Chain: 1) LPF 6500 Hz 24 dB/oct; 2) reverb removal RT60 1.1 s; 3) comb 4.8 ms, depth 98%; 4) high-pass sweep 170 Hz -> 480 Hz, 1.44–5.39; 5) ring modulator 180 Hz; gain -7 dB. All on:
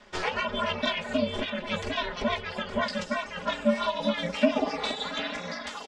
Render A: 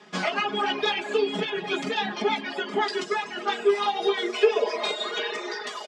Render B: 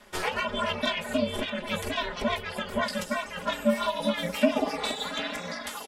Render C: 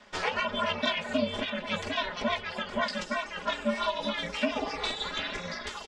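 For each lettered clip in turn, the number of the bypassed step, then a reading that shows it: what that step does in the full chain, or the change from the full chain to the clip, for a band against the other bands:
5, crest factor change -2.5 dB; 1, 8 kHz band +5.5 dB; 4, 250 Hz band -4.0 dB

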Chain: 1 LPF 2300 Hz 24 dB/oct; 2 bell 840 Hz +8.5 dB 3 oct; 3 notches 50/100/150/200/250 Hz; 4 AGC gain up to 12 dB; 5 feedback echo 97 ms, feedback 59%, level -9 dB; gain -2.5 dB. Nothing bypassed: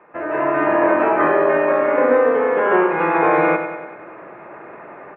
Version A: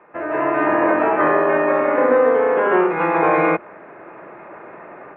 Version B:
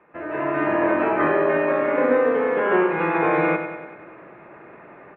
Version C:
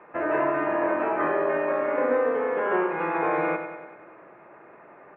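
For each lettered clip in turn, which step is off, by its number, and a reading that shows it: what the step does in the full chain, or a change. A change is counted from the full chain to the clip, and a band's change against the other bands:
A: 5, echo-to-direct -7.0 dB to none; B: 2, 125 Hz band +4.5 dB; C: 4, momentary loudness spread change -4 LU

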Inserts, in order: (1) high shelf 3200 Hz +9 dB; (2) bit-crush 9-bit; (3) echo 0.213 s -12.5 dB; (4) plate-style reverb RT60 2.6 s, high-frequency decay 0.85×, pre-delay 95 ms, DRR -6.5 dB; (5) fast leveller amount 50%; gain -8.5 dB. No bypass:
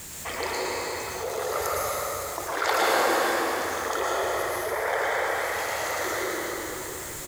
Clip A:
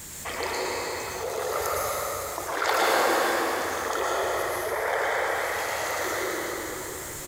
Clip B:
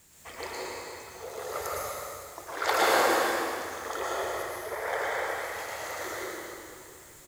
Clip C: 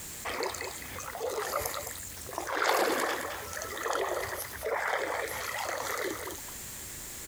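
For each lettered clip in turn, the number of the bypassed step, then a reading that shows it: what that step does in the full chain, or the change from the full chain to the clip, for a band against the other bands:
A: 2, distortion -28 dB; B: 5, crest factor change +3.5 dB; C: 4, crest factor change +3.5 dB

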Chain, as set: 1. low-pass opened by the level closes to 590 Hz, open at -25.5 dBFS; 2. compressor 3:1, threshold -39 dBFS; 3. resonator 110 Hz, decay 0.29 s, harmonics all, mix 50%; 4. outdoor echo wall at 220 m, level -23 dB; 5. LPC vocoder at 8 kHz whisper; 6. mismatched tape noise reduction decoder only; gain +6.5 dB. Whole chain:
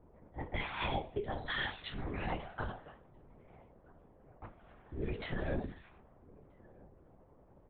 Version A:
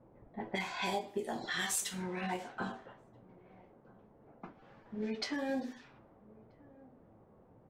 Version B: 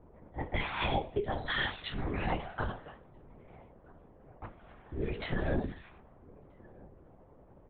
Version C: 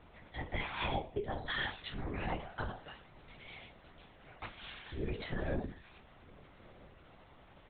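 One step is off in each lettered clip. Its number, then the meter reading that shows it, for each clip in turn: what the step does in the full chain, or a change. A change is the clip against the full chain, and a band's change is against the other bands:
5, 125 Hz band -7.5 dB; 3, loudness change +4.5 LU; 1, momentary loudness spread change +4 LU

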